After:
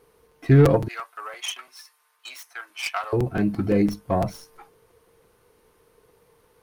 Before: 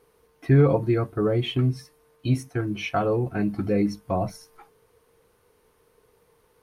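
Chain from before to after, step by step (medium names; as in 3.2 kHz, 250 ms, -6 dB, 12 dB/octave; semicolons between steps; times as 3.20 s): tracing distortion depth 0.12 ms; 0.88–3.13 s: high-pass 940 Hz 24 dB/octave; crackling interface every 0.17 s, samples 256, repeat, from 0.31 s; trim +2.5 dB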